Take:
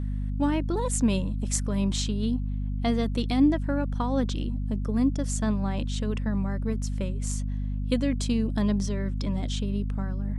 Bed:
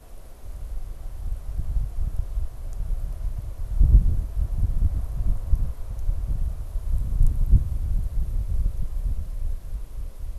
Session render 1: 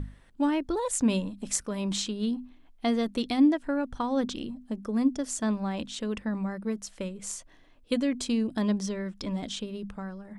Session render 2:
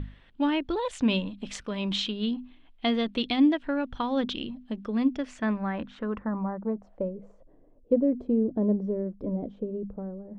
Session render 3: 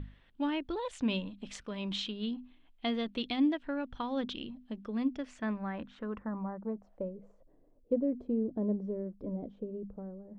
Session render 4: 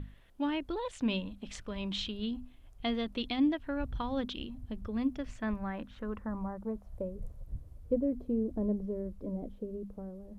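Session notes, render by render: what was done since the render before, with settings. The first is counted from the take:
hum notches 50/100/150/200/250 Hz
low-pass sweep 3.2 kHz -> 500 Hz, 4.98–7.31 s
trim -7 dB
add bed -23.5 dB

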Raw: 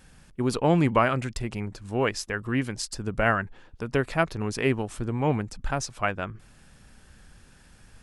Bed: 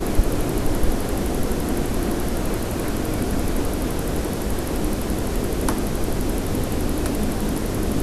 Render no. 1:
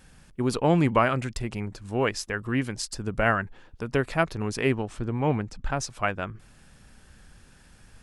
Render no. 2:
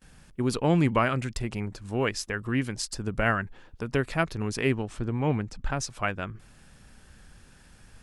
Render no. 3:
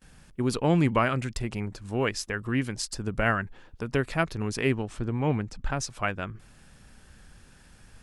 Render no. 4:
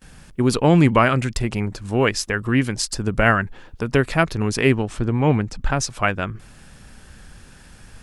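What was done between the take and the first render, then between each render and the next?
4.74–5.79 s: distance through air 59 m
gate with hold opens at -47 dBFS; dynamic bell 750 Hz, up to -4 dB, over -35 dBFS, Q 0.77
no audible change
trim +8.5 dB; peak limiter -3 dBFS, peak gain reduction 1 dB

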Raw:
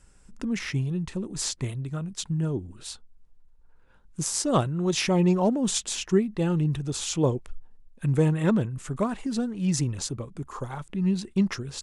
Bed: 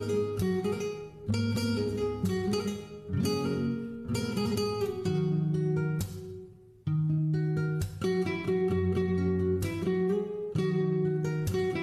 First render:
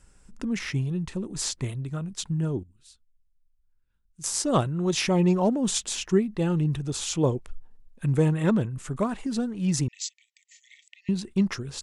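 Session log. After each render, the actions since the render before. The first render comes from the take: 2.63–4.24 s: amplifier tone stack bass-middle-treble 6-0-2; 9.88–11.09 s: brick-wall FIR band-pass 1.8–8 kHz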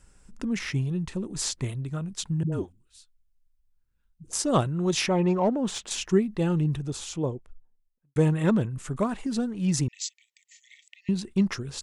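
2.43–4.39 s: phase dispersion highs, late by 93 ms, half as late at 360 Hz; 5.06–5.91 s: overdrive pedal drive 10 dB, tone 1.3 kHz, clips at -12 dBFS; 6.44–8.16 s: studio fade out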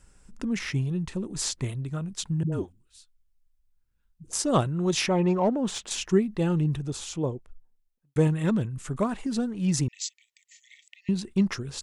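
8.27–8.85 s: peaking EQ 700 Hz -5 dB 2.9 oct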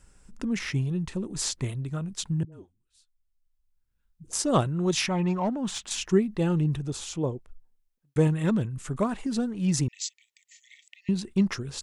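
2.45–4.41 s: fade in, from -22.5 dB; 4.91–6.04 s: peaking EQ 450 Hz -10 dB 0.95 oct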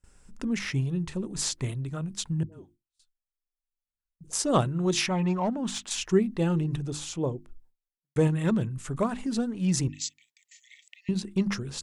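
hum notches 50/100/150/200/250/300/350 Hz; gate with hold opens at -49 dBFS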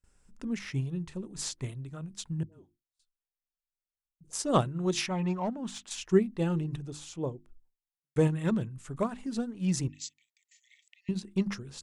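upward expansion 1.5:1, over -34 dBFS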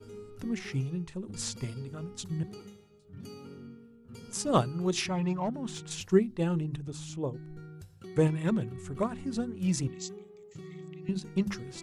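add bed -16.5 dB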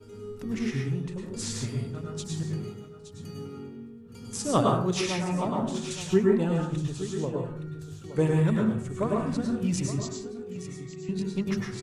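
delay 869 ms -12.5 dB; plate-style reverb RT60 0.55 s, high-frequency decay 0.5×, pre-delay 90 ms, DRR -1.5 dB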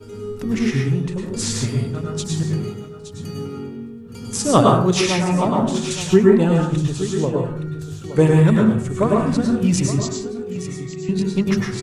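trim +10 dB; peak limiter -2 dBFS, peak gain reduction 2 dB

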